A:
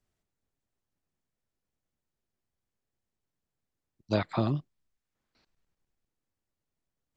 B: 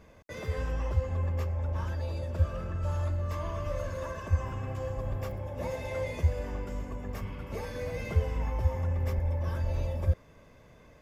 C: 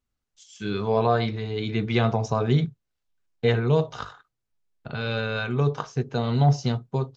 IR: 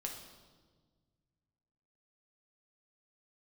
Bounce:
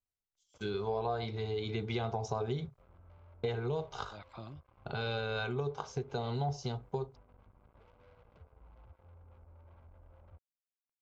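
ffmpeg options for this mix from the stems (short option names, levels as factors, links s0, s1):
-filter_complex "[0:a]volume=0.178[s0];[1:a]lowpass=f=1200:w=0.5412,lowpass=f=1200:w=1.3066,acompressor=threshold=0.00562:ratio=2.5,acrusher=bits=6:mix=0:aa=0.5,adelay=250,volume=0.178[s1];[2:a]agate=range=0.0794:threshold=0.00562:ratio=16:detection=peak,equalizer=f=400:t=o:w=0.33:g=10,equalizer=f=800:t=o:w=0.33:g=7,equalizer=f=1250:t=o:w=0.33:g=-3,equalizer=f=2500:t=o:w=0.33:g=-4,acompressor=threshold=0.0501:ratio=4,volume=0.75,asplit=2[s2][s3];[s3]apad=whole_len=320272[s4];[s0][s4]sidechaincompress=threshold=0.00631:ratio=8:attack=6:release=210[s5];[s5][s1][s2]amix=inputs=3:normalize=0,equalizer=f=260:w=0.62:g=-7,bandreject=f=1800:w=5.2"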